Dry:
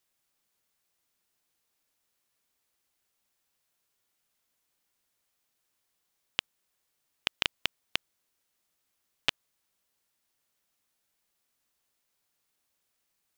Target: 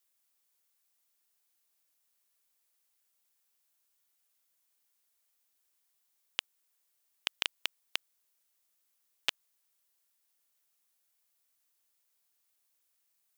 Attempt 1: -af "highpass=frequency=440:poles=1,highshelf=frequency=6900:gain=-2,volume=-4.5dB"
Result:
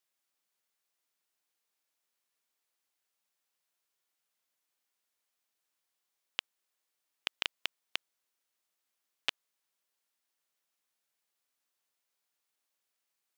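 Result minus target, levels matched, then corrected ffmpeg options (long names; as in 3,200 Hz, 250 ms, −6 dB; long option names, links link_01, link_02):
8,000 Hz band −4.0 dB
-af "highpass=frequency=440:poles=1,highshelf=frequency=6900:gain=9,volume=-4.5dB"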